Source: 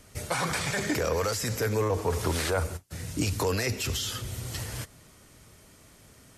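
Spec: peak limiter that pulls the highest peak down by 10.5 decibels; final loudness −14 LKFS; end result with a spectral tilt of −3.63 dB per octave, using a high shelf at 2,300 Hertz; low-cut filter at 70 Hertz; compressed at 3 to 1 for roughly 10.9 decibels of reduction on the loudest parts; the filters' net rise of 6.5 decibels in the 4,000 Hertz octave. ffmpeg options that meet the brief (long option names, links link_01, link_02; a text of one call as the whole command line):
ffmpeg -i in.wav -af "highpass=70,highshelf=frequency=2300:gain=3,equalizer=frequency=4000:width_type=o:gain=5.5,acompressor=threshold=-38dB:ratio=3,volume=29dB,alimiter=limit=-5dB:level=0:latency=1" out.wav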